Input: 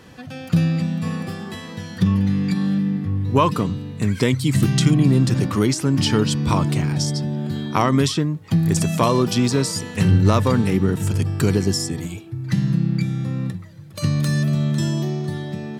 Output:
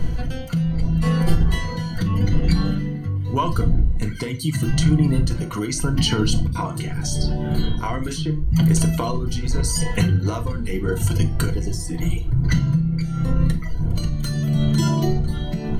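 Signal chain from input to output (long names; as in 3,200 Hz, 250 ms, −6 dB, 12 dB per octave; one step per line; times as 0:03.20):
wind on the microphone 86 Hz −21 dBFS
reverb reduction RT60 0.99 s
EQ curve with evenly spaced ripples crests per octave 1.9, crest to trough 12 dB
automatic gain control gain up to 13 dB
brickwall limiter −9.5 dBFS, peak gain reduction 8.5 dB
downward compressor 2.5 to 1, threshold −22 dBFS, peak gain reduction 6.5 dB
amplitude tremolo 0.81 Hz, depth 56%
0:06.47–0:08.62: three-band delay without the direct sound lows, highs, mids 50/80 ms, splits 190/4,500 Hz
convolution reverb RT60 0.30 s, pre-delay 5 ms, DRR 4.5 dB
level +4 dB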